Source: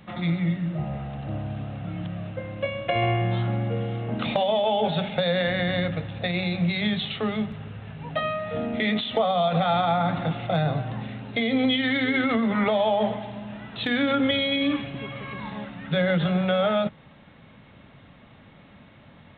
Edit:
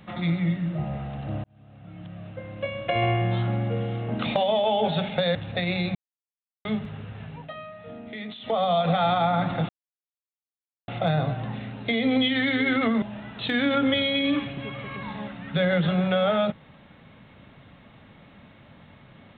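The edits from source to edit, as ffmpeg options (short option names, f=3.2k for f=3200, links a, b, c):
-filter_complex "[0:a]asplit=9[a][b][c][d][e][f][g][h][i];[a]atrim=end=1.44,asetpts=PTS-STARTPTS,afade=t=out:st=1.436:d=0.004:c=hsin[j];[b]atrim=start=1.44:end=5.352,asetpts=PTS-STARTPTS,afade=t=in:d=1.59[k];[c]atrim=start=6.018:end=6.62,asetpts=PTS-STARTPTS,afade=t=out:st=0.598:d=0.004:c=hsin[l];[d]atrim=start=6.62:end=7.32,asetpts=PTS-STARTPTS,volume=0[m];[e]atrim=start=7.32:end=8.17,asetpts=PTS-STARTPTS,afade=t=in:d=0.004:c=hsin,afade=t=out:st=0.63:d=0.22:silence=0.251189[n];[f]atrim=start=8.17:end=9.07,asetpts=PTS-STARTPTS,volume=-12dB[o];[g]atrim=start=9.07:end=10.36,asetpts=PTS-STARTPTS,afade=t=in:d=0.22:silence=0.251189,afade=t=out:st=1.286:d=0.004:c=hsin,apad=pad_dur=1.19[p];[h]atrim=start=10.36:end=12.502,asetpts=PTS-STARTPTS,afade=t=in:d=0.004:c=hsin[q];[i]atrim=start=13.388[r];[j][k]concat=n=2:v=0:a=1[s];[l][m][n][o][p][q]concat=n=6:v=0:a=1[t];[s][t]acrossfade=d=0.004:c1=hsin:c2=hsin[u];[u][r]acrossfade=d=0.004:c1=hsin:c2=hsin"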